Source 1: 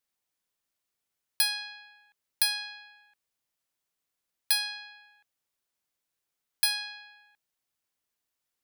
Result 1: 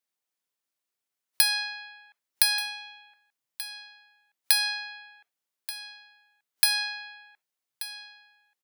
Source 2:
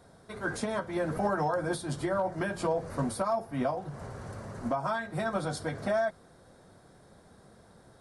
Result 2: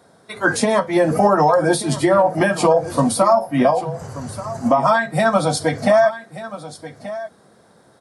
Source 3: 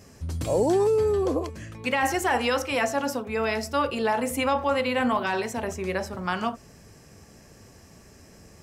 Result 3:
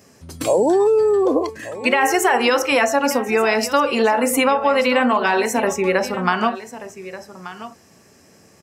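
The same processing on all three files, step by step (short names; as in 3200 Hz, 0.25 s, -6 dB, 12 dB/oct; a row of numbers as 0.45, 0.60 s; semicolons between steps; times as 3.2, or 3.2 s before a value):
compressor 6:1, threshold -25 dBFS; spectral noise reduction 11 dB; Bessel high-pass 180 Hz, order 2; echo 1.182 s -15 dB; dynamic EQ 3400 Hz, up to -4 dB, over -51 dBFS, Q 4.2; normalise peaks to -3 dBFS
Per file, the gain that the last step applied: +8.5, +17.0, +13.0 dB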